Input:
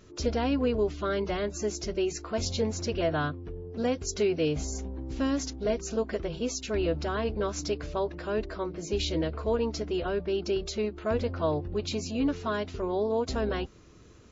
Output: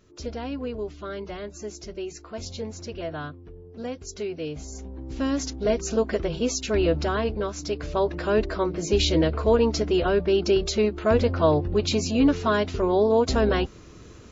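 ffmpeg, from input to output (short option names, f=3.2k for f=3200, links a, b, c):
-af "volume=15dB,afade=t=in:st=4.64:d=1.22:silence=0.281838,afade=t=out:st=7.05:d=0.54:silence=0.446684,afade=t=in:st=7.59:d=0.58:silence=0.354813"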